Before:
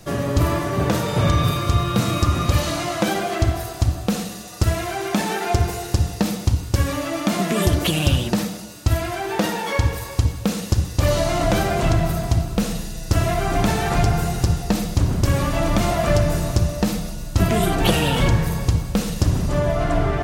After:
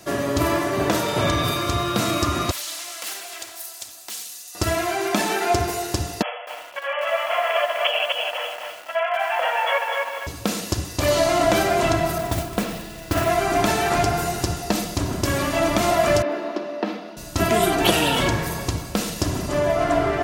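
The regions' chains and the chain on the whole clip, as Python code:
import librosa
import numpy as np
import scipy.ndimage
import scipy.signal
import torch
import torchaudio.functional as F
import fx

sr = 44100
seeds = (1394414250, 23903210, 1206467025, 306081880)

y = fx.chain(x, sr, fx.differentiator(),
    fx.doppler_dist(depth_ms=0.65), at=(2.51, 4.55))
y = fx.chain(y, sr, fx.over_compress(threshold_db=-20.0, ratio=-0.5),
    fx.brickwall_bandpass(low_hz=470.0, high_hz=3400.0),
    fx.echo_crushed(ms=251, feedback_pct=35, bits=7, wet_db=-3.5), at=(6.22, 10.27))
y = fx.chain(y, sr, fx.lowpass(hz=3100.0, slope=12),
    fx.mod_noise(seeds[0], snr_db=17),
    fx.doppler_dist(depth_ms=0.25), at=(12.18, 13.3))
y = fx.chain(y, sr, fx.steep_highpass(hz=220.0, slope=48),
    fx.air_absorb(metres=330.0), at=(16.22, 17.17))
y = fx.highpass(y, sr, hz=280.0, slope=6)
y = y + 0.35 * np.pad(y, (int(3.0 * sr / 1000.0), 0))[:len(y)]
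y = F.gain(torch.from_numpy(y), 2.0).numpy()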